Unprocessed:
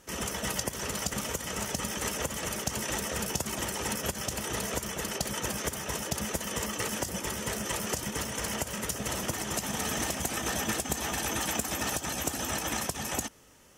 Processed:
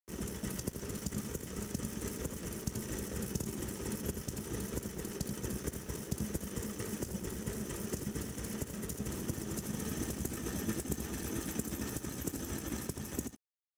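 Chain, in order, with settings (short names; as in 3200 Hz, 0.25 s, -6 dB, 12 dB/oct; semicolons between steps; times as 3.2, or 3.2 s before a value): EQ curve 390 Hz 0 dB, 700 Hz -17 dB, 1500 Hz -11 dB, 2900 Hz -15 dB, 11000 Hz -7 dB; crossover distortion -49 dBFS; on a send: echo 82 ms -8 dB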